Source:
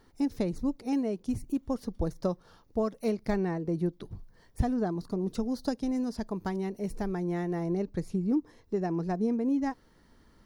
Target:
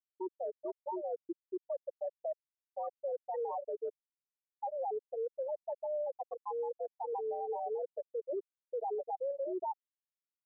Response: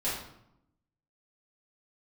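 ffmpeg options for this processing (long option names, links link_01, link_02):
-af "highpass=frequency=480:width_type=q:width=0.5412,highpass=frequency=480:width_type=q:width=1.307,lowpass=frequency=2900:width_type=q:width=0.5176,lowpass=frequency=2900:width_type=q:width=0.7071,lowpass=frequency=2900:width_type=q:width=1.932,afreqshift=88,aresample=16000,asoftclip=type=hard:threshold=-36.5dB,aresample=44100,afftfilt=real='re*gte(hypot(re,im),0.0501)':imag='im*gte(hypot(re,im),0.0501)':win_size=1024:overlap=0.75,tiltshelf=frequency=830:gain=5.5,areverse,acompressor=threshold=-47dB:ratio=6,areverse,alimiter=level_in=24.5dB:limit=-24dB:level=0:latency=1:release=221,volume=-24.5dB,volume=17.5dB"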